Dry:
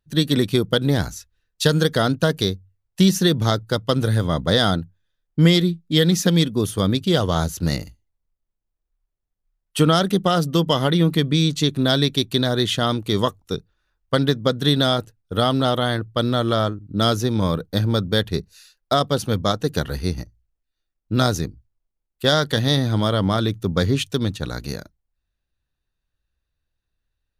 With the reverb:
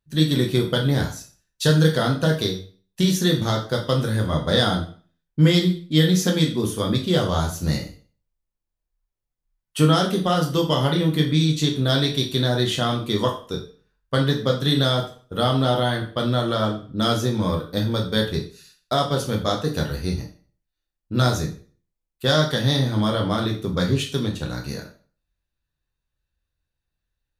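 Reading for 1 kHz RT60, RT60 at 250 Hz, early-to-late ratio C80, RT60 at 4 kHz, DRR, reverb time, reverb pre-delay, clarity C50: 0.40 s, 0.40 s, 13.5 dB, 0.40 s, 0.0 dB, 0.45 s, 5 ms, 9.0 dB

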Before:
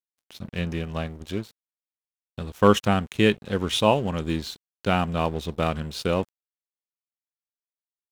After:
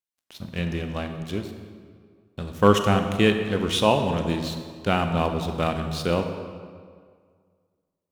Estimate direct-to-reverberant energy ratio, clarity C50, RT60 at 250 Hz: 6.0 dB, 7.0 dB, 1.9 s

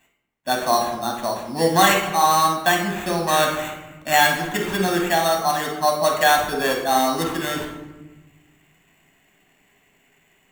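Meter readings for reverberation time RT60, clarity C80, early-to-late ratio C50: 1.1 s, 8.0 dB, 4.0 dB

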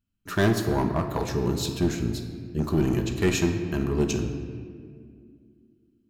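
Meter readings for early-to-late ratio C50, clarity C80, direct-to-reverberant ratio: 7.0 dB, 8.0 dB, 4.0 dB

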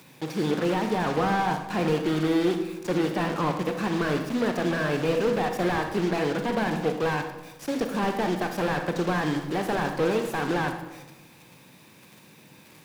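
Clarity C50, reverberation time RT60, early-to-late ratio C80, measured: 7.0 dB, 1.1 s, 9.5 dB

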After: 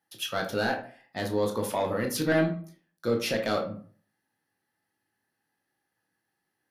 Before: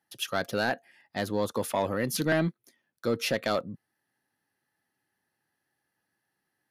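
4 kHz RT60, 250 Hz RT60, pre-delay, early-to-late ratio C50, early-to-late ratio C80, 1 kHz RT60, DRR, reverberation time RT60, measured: 0.30 s, 0.45 s, 13 ms, 8.5 dB, 13.5 dB, 0.45 s, 2.0 dB, 0.45 s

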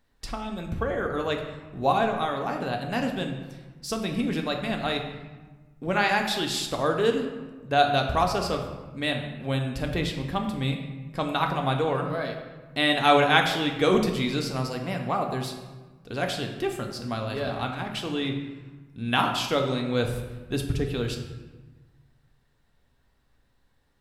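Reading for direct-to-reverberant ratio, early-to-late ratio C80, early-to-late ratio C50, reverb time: 2.5 dB, 8.0 dB, 6.5 dB, 1.3 s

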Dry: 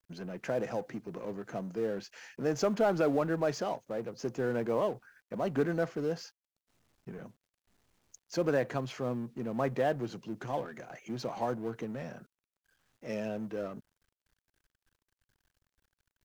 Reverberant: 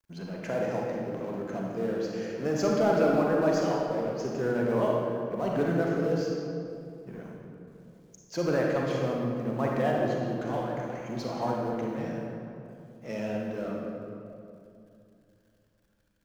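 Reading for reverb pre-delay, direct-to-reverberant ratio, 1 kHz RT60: 33 ms, −2.0 dB, 2.4 s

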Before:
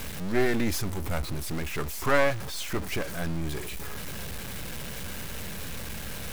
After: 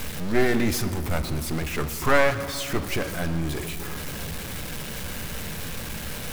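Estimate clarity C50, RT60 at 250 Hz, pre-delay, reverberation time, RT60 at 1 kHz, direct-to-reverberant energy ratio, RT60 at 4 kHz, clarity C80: 11.5 dB, 3.8 s, 4 ms, 2.7 s, 2.5 s, 9.5 dB, 1.5 s, 12.0 dB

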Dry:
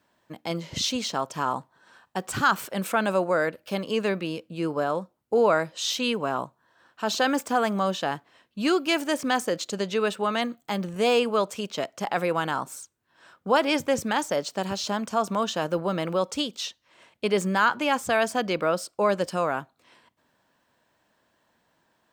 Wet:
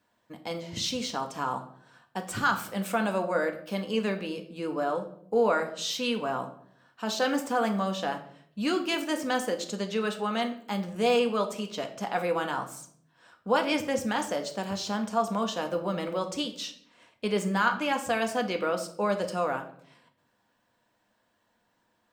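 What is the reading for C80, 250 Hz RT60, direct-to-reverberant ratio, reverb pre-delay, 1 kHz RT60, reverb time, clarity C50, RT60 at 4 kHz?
14.5 dB, 0.85 s, 4.0 dB, 4 ms, 0.55 s, 0.65 s, 11.5 dB, 0.45 s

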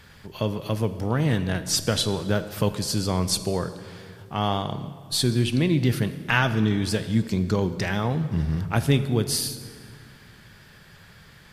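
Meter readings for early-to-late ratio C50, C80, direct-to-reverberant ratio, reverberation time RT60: 12.0 dB, 13.0 dB, 11.0 dB, 2.1 s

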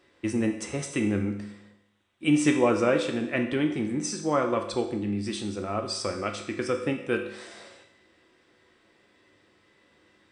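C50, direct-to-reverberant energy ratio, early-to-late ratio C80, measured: 8.0 dB, 3.5 dB, 10.5 dB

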